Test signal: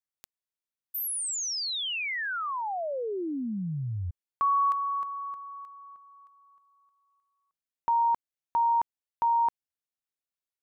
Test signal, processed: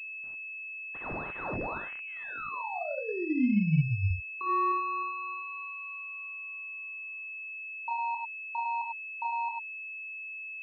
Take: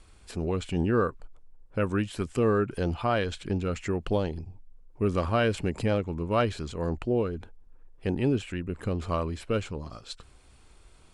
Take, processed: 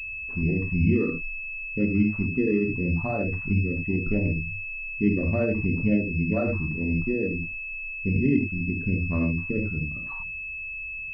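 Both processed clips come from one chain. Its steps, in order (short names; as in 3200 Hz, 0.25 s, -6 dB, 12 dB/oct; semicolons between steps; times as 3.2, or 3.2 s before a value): formant sharpening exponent 3; resonant low shelf 330 Hz +7.5 dB, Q 1.5; non-linear reverb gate 0.12 s flat, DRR 0 dB; pulse-width modulation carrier 2600 Hz; gain -5 dB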